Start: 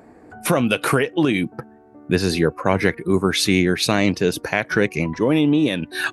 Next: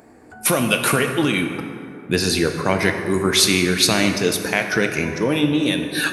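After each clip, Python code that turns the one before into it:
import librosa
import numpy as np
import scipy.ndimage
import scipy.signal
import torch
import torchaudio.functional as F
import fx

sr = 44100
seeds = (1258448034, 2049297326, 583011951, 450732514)

y = fx.high_shelf(x, sr, hz=2800.0, db=10.5)
y = fx.rev_plate(y, sr, seeds[0], rt60_s=2.5, hf_ratio=0.5, predelay_ms=0, drr_db=4.5)
y = y * 10.0 ** (-2.5 / 20.0)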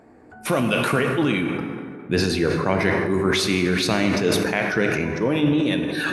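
y = fx.lowpass(x, sr, hz=2100.0, slope=6)
y = fx.sustainer(y, sr, db_per_s=27.0)
y = y * 10.0 ** (-2.0 / 20.0)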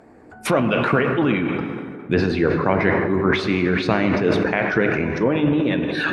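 y = fx.hpss(x, sr, part='percussive', gain_db=5)
y = fx.env_lowpass_down(y, sr, base_hz=2200.0, full_db=-15.5)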